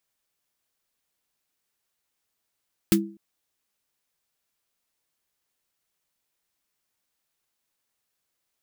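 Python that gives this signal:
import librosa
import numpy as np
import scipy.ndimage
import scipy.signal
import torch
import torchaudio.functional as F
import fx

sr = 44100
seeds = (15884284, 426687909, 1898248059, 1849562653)

y = fx.drum_snare(sr, seeds[0], length_s=0.25, hz=200.0, second_hz=330.0, noise_db=-3.0, noise_from_hz=1200.0, decay_s=0.4, noise_decay_s=0.1)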